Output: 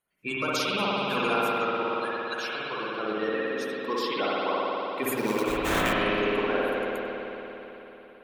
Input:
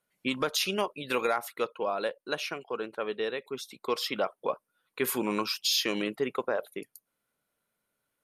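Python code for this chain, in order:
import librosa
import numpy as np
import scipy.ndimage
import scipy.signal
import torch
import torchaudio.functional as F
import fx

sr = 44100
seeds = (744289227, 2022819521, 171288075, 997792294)

y = fx.spec_quant(x, sr, step_db=30)
y = fx.highpass(y, sr, hz=1300.0, slope=12, at=(1.83, 2.55))
y = fx.sample_hold(y, sr, seeds[0], rate_hz=5000.0, jitter_pct=20, at=(5.17, 5.93))
y = y + 10.0 ** (-23.5 / 20.0) * np.pad(y, (int(97 * sr / 1000.0), 0))[:len(y)]
y = fx.rev_spring(y, sr, rt60_s=3.8, pass_ms=(56,), chirp_ms=80, drr_db=-7.0)
y = F.gain(torch.from_numpy(y), -2.5).numpy()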